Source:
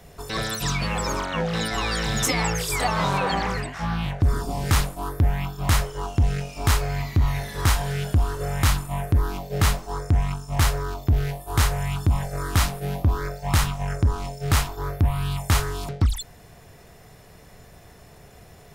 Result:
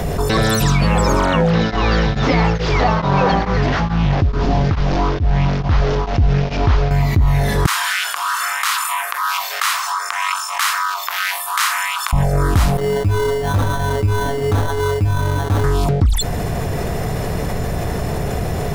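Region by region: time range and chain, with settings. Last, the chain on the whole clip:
1.5–6.91 delta modulation 32 kbps, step -26.5 dBFS + air absorption 88 m + beating tremolo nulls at 2.3 Hz
7.66–12.13 harmonic tremolo 2.1 Hz, crossover 580 Hz + elliptic high-pass 1100 Hz, stop band 80 dB
12.77–15.64 metallic resonator 100 Hz, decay 0.33 s, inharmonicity 0.008 + sample-rate reducer 2500 Hz
whole clip: tilt shelf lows +4.5 dB, about 1200 Hz; fast leveller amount 70%

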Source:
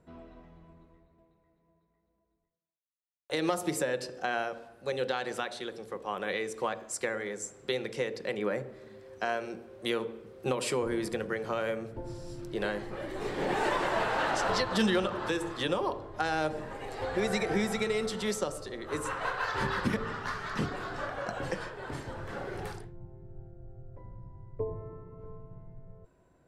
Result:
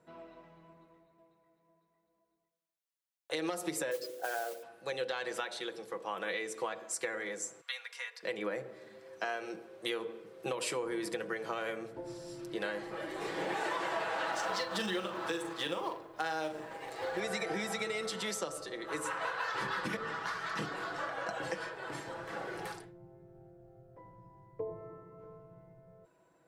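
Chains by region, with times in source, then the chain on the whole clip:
3.91–4.63 formant sharpening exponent 2 + modulation noise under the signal 14 dB
7.61–8.23 HPF 1100 Hz 24 dB/oct + bell 6200 Hz -6 dB 2.7 oct + comb 4.2 ms, depth 56%
14.32–17.19 G.711 law mismatch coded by A + doubler 42 ms -9 dB
whole clip: HPF 430 Hz 6 dB/oct; comb 6.1 ms, depth 51%; compressor 3:1, threshold -33 dBFS

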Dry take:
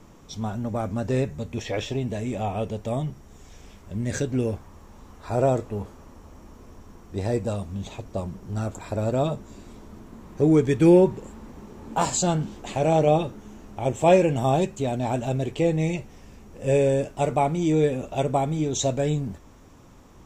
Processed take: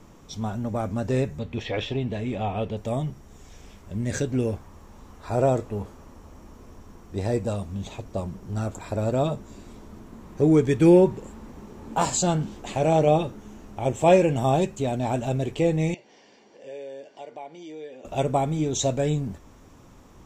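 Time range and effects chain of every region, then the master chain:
1.39–2.77 resonant high shelf 5000 Hz -9 dB, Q 1.5 + notch 610 Hz, Q 18
15.94–18.05 speaker cabinet 390–6100 Hz, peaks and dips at 1100 Hz -4 dB, 2800 Hz +4 dB, 4500 Hz +6 dB + compressor 2:1, threshold -48 dBFS + notch comb 1300 Hz
whole clip: dry

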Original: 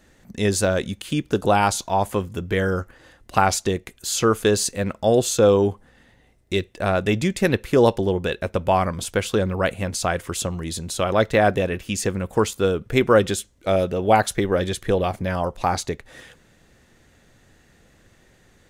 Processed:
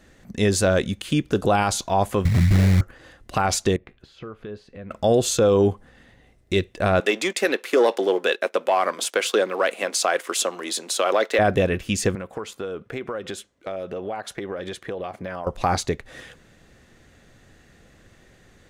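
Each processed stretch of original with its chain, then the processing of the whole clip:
2.25–2.81 tone controls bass +13 dB, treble +14 dB + comb 1.1 ms, depth 72% + sample-rate reducer 2100 Hz, jitter 20%
3.76–4.91 compressor 3:1, threshold -37 dBFS + air absorption 370 m + resonator 70 Hz, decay 0.25 s, mix 40%
7–11.39 sample leveller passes 1 + Bessel high-pass 470 Hz, order 6
12.15–15.47 HPF 500 Hz 6 dB/oct + high shelf 3200 Hz -11 dB + compressor, threshold -29 dBFS
whole clip: high shelf 8200 Hz -6 dB; notch 900 Hz, Q 15; limiter -12 dBFS; gain +2.5 dB

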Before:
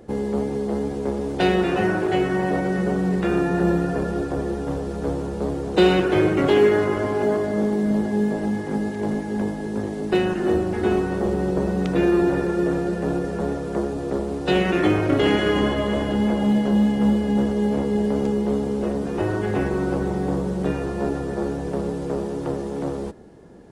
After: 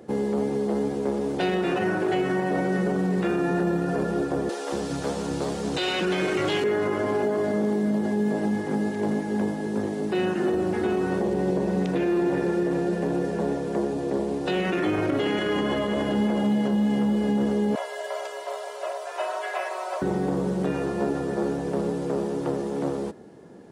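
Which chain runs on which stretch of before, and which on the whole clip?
4.49–6.64 bell 5400 Hz +10.5 dB 2.7 oct + bands offset in time highs, lows 0.23 s, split 360 Hz
11.19–14.44 notch 1300 Hz, Q 5.1 + Doppler distortion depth 0.1 ms
17.75–20.02 elliptic high-pass 540 Hz, stop band 50 dB + comb 3 ms, depth 99%
whole clip: HPF 130 Hz 12 dB/oct; limiter -16.5 dBFS

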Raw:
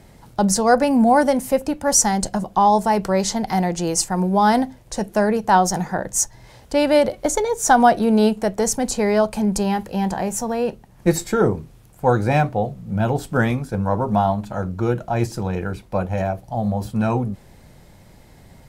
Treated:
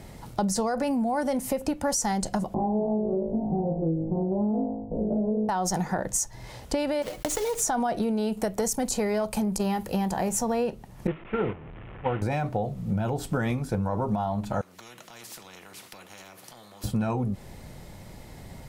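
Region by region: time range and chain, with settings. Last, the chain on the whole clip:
2.54–5.49 stepped spectrum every 0.1 s + inverse Chebyshev low-pass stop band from 1900 Hz, stop band 60 dB + flutter echo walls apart 3.2 m, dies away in 0.56 s
7.02–7.62 block floating point 3-bit + comb 6.4 ms, depth 44% + compressor 10:1, threshold -25 dBFS
8.32–10.29 high shelf 11000 Hz +11.5 dB + core saturation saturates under 310 Hz
11.07–12.22 delta modulation 16 kbps, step -17 dBFS + expander -12 dBFS + air absorption 250 m
14.61–16.84 HPF 160 Hz 24 dB/oct + compressor 2:1, threshold -44 dBFS + spectral compressor 4:1
whole clip: limiter -12.5 dBFS; compressor 6:1, threshold -27 dBFS; notch 1600 Hz, Q 20; gain +3 dB

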